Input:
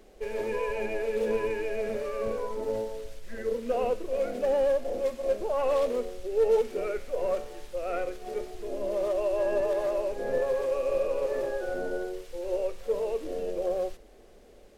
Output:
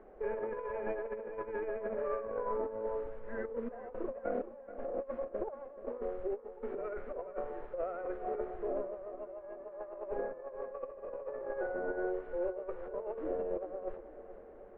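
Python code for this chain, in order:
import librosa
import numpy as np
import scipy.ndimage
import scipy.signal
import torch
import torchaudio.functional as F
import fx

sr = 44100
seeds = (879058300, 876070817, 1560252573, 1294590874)

y = fx.tracing_dist(x, sr, depth_ms=0.12)
y = scipy.signal.sosfilt(scipy.signal.butter(4, 1500.0, 'lowpass', fs=sr, output='sos'), y)
y = fx.low_shelf(y, sr, hz=330.0, db=-10.0)
y = fx.over_compress(y, sr, threshold_db=-37.0, ratio=-0.5)
y = fx.echo_feedback(y, sr, ms=430, feedback_pct=47, wet_db=-13)
y = y * librosa.db_to_amplitude(-1.0)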